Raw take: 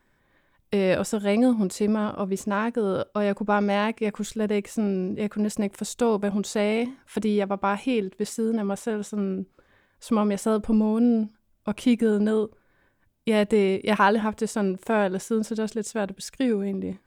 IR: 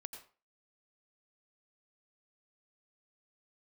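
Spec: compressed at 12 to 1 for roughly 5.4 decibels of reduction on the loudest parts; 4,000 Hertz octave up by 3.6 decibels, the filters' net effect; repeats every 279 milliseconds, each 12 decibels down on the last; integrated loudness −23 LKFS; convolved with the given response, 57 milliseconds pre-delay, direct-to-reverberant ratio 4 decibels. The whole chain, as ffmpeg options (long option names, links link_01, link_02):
-filter_complex "[0:a]equalizer=frequency=4000:width_type=o:gain=5,acompressor=threshold=-21dB:ratio=12,aecho=1:1:279|558|837:0.251|0.0628|0.0157,asplit=2[link_01][link_02];[1:a]atrim=start_sample=2205,adelay=57[link_03];[link_02][link_03]afir=irnorm=-1:irlink=0,volume=0dB[link_04];[link_01][link_04]amix=inputs=2:normalize=0,volume=3dB"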